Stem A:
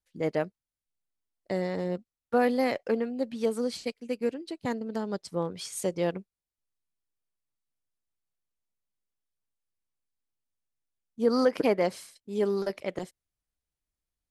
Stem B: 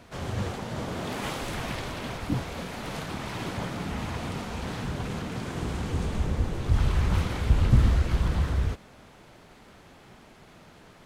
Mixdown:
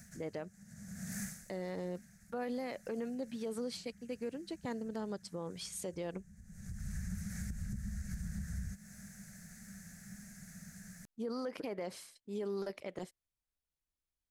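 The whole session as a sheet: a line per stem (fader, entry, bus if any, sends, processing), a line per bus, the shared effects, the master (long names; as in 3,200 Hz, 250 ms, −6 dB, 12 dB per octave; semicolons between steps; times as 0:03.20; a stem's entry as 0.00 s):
−5.5 dB, 0.00 s, no send, brickwall limiter −22 dBFS, peak gain reduction 9.5 dB
−3.0 dB, 0.00 s, no send, drawn EQ curve 130 Hz 0 dB, 200 Hz +13 dB, 310 Hz −25 dB, 700 Hz −11 dB, 1,000 Hz −25 dB, 1,700 Hz +6 dB, 3,100 Hz −18 dB, 6,300 Hz +14 dB; downward compressor 10 to 1, threshold −34 dBFS, peak gain reduction 23 dB; automatic ducking −20 dB, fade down 0.25 s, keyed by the first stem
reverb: not used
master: brickwall limiter −31 dBFS, peak gain reduction 4 dB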